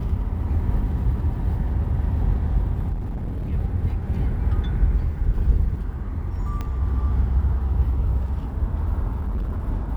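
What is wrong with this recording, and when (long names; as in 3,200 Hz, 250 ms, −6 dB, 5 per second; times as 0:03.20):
0:02.92–0:03.53: clipping −24.5 dBFS
0:06.61: click −17 dBFS
0:09.11–0:09.63: clipping −22 dBFS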